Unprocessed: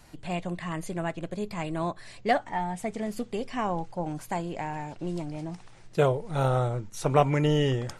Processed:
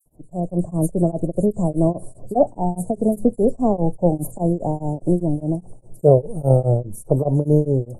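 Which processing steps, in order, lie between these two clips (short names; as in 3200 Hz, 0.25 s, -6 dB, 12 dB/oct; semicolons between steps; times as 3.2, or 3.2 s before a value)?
elliptic band-stop 610–9500 Hz, stop band 70 dB; dispersion lows, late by 59 ms, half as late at 3000 Hz; AGC gain up to 16 dB; beating tremolo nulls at 4.9 Hz; gain +1.5 dB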